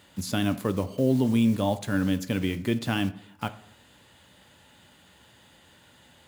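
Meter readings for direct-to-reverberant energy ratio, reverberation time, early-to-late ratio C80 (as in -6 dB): 11.0 dB, 0.70 s, 19.0 dB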